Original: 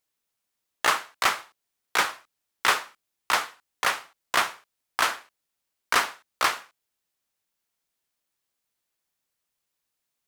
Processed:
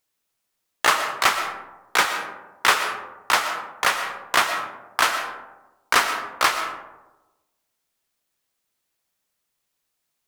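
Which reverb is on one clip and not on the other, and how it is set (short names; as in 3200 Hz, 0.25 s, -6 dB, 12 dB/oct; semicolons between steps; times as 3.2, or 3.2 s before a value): digital reverb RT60 1.1 s, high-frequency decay 0.35×, pre-delay 80 ms, DRR 7 dB; gain +4 dB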